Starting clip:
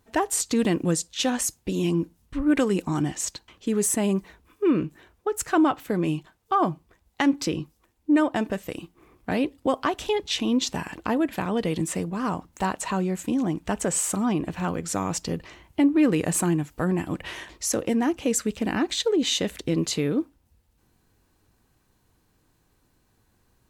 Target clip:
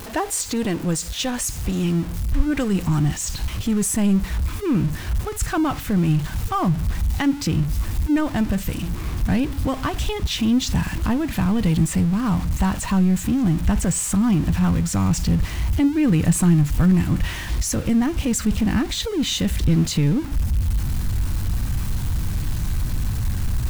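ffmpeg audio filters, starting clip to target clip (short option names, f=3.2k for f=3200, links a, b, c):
-af "aeval=exprs='val(0)+0.5*0.0376*sgn(val(0))':c=same,asubboost=boost=10:cutoff=130,volume=-1dB"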